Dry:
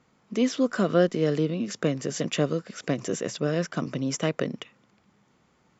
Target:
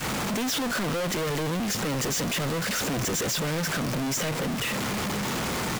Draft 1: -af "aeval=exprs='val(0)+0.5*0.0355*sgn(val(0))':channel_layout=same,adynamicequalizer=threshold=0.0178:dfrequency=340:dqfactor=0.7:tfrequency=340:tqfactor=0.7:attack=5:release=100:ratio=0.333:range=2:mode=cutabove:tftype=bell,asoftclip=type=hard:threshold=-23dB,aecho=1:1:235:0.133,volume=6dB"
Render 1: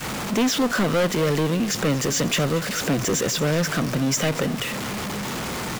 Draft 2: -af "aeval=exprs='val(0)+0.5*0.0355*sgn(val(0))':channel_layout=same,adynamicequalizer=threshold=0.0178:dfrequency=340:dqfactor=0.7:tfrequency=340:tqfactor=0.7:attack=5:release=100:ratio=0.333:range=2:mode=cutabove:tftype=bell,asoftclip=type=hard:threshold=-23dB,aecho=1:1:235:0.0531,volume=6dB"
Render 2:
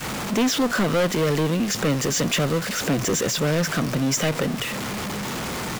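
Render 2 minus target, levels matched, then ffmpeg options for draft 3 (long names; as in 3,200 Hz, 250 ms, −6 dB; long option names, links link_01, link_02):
hard clipping: distortion −7 dB
-af "aeval=exprs='val(0)+0.5*0.0355*sgn(val(0))':channel_layout=same,adynamicequalizer=threshold=0.0178:dfrequency=340:dqfactor=0.7:tfrequency=340:tqfactor=0.7:attack=5:release=100:ratio=0.333:range=2:mode=cutabove:tftype=bell,asoftclip=type=hard:threshold=-33dB,aecho=1:1:235:0.0531,volume=6dB"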